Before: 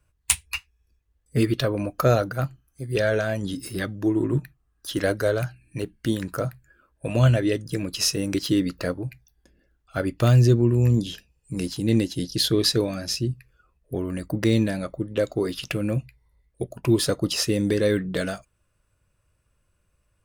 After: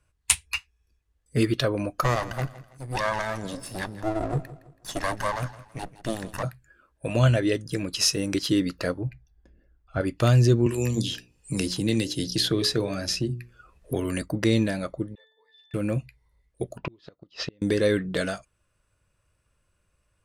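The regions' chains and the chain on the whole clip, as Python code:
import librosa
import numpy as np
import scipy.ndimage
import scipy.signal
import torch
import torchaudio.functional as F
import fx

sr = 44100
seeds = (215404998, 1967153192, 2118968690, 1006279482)

y = fx.chain(x, sr, fx.lower_of_two(delay_ms=1.1),
    fx.peak_eq(hz=2900.0, db=-4.5, octaves=0.95),
    fx.echo_feedback(ms=164, feedback_pct=37, wet_db=-16.5), at=(2.03, 6.43))
y = fx.chain(y, sr, fx.lowpass(hz=1300.0, slope=6),
    fx.low_shelf(hz=100.0, db=10.5), at=(9.01, 10.01))
y = fx.chain(y, sr, fx.hum_notches(base_hz=60, count=10),
    fx.band_squash(depth_pct=70), at=(10.66, 14.22))
y = fx.chain(y, sr, fx.highpass(hz=770.0, slope=24),
    fx.high_shelf(hz=2800.0, db=8.0),
    fx.octave_resonator(note='A', decay_s=0.56), at=(15.15, 15.74))
y = fx.chain(y, sr, fx.lowpass(hz=4300.0, slope=24),
    fx.gate_flip(shuts_db=-16.0, range_db=-35), at=(16.78, 17.62))
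y = scipy.signal.sosfilt(scipy.signal.butter(2, 11000.0, 'lowpass', fs=sr, output='sos'), y)
y = fx.low_shelf(y, sr, hz=420.0, db=-3.5)
y = y * 10.0 ** (1.0 / 20.0)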